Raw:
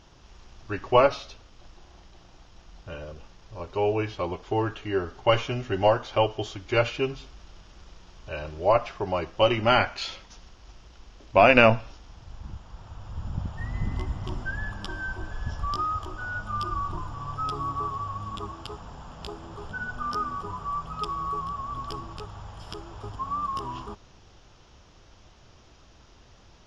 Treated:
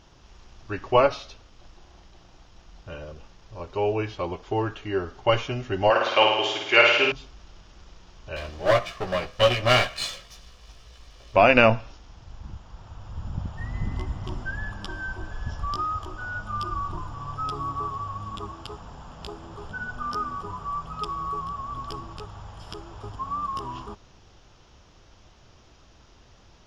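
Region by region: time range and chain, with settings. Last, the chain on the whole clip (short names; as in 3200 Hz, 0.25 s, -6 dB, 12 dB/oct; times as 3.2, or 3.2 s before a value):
5.9–7.12 HPF 280 Hz + bell 2300 Hz +12 dB 1.8 oct + flutter echo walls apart 9.2 m, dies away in 1 s
8.36–11.36 minimum comb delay 1.7 ms + bell 3900 Hz +5 dB 1.7 oct + doubler 16 ms -5 dB
whole clip: dry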